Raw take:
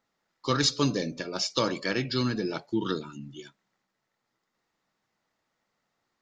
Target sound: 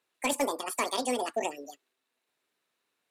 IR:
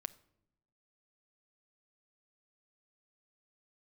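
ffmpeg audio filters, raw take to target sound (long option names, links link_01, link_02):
-filter_complex "[0:a]highpass=frequency=49:width=0.5412,highpass=frequency=49:width=1.3066,asplit=2[link_01][link_02];[link_02]aeval=exprs='0.119*(abs(mod(val(0)/0.119+3,4)-2)-1)':channel_layout=same,volume=-5dB[link_03];[link_01][link_03]amix=inputs=2:normalize=0,asetrate=88200,aresample=44100,acrossover=split=8100[link_04][link_05];[link_05]acompressor=threshold=-33dB:ratio=4:attack=1:release=60[link_06];[link_04][link_06]amix=inputs=2:normalize=0,volume=-5.5dB"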